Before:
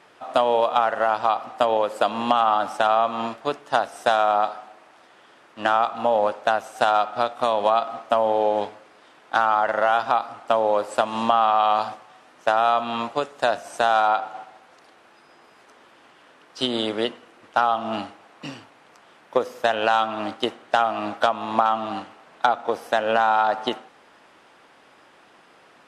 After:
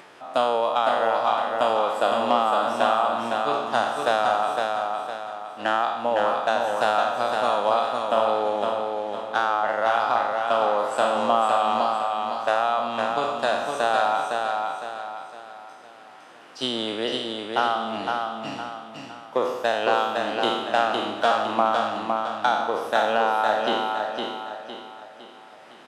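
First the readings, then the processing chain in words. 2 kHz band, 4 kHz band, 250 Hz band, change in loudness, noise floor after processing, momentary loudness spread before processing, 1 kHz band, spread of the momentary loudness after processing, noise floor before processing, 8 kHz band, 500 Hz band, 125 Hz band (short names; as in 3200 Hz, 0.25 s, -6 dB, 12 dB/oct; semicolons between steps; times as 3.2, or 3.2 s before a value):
0.0 dB, +1.0 dB, -0.5 dB, -1.5 dB, -46 dBFS, 9 LU, -1.0 dB, 11 LU, -54 dBFS, n/a, -0.5 dB, -1.5 dB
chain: spectral trails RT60 0.99 s; HPF 89 Hz; on a send: feedback echo 0.509 s, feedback 40%, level -4 dB; on the sum: upward compressor, threshold -36 dBFS; gain -4.5 dB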